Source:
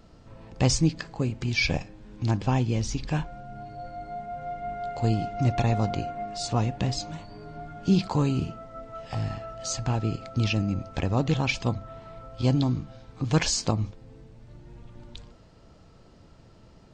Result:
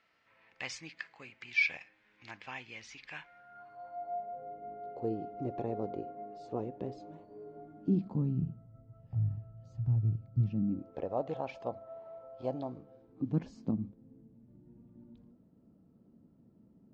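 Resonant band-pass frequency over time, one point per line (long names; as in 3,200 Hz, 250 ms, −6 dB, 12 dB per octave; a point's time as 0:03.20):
resonant band-pass, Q 3.1
0:03.27 2,100 Hz
0:04.51 410 Hz
0:07.57 410 Hz
0:08.72 110 Hz
0:10.32 110 Hz
0:11.13 620 Hz
0:12.70 620 Hz
0:13.35 230 Hz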